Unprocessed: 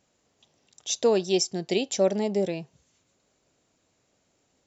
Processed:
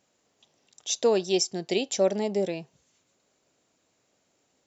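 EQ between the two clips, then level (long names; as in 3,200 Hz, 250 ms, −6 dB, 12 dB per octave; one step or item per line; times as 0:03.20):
low-shelf EQ 110 Hz −11.5 dB
0.0 dB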